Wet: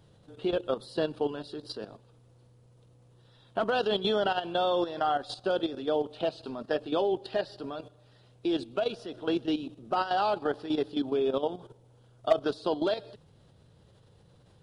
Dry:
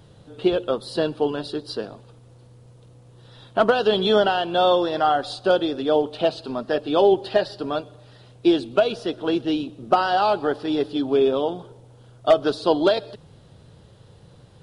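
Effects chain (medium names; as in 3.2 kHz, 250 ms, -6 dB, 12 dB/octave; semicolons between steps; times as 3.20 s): level held to a coarse grid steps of 11 dB; trim -4 dB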